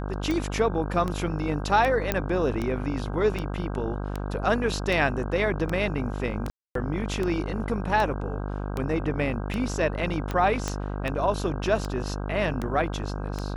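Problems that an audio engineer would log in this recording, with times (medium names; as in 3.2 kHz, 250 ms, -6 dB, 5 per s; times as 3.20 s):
buzz 50 Hz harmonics 32 -31 dBFS
tick 78 rpm -16 dBFS
2.12 s: pop -9 dBFS
6.50–6.75 s: dropout 253 ms
10.68 s: pop -14 dBFS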